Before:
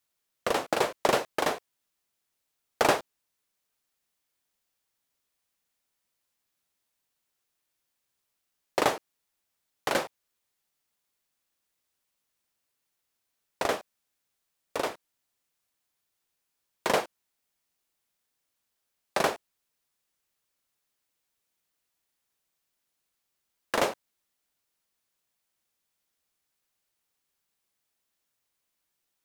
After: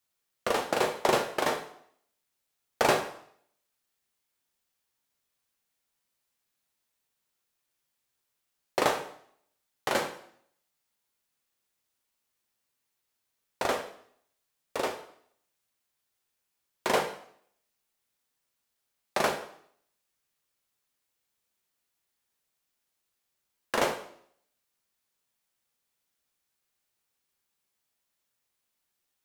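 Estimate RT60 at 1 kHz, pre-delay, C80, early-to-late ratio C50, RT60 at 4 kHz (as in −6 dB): 0.65 s, 4 ms, 12.5 dB, 10.0 dB, 0.60 s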